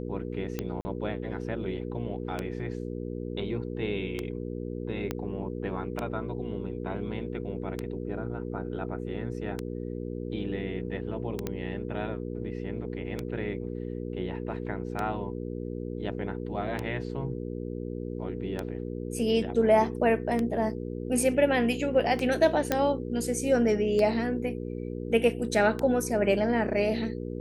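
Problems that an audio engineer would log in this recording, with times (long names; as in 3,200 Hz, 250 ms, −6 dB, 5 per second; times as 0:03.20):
mains hum 60 Hz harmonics 8 −35 dBFS
scratch tick 33 1/3 rpm −17 dBFS
0:00.81–0:00.85: drop-out 40 ms
0:05.11: click −16 dBFS
0:11.47: click −17 dBFS
0:22.72: click −10 dBFS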